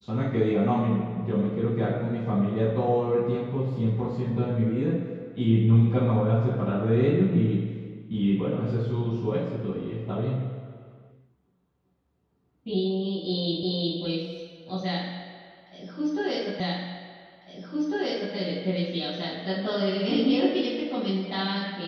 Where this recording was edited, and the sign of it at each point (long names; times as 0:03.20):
0:13.63: the same again, the last 0.36 s
0:16.60: the same again, the last 1.75 s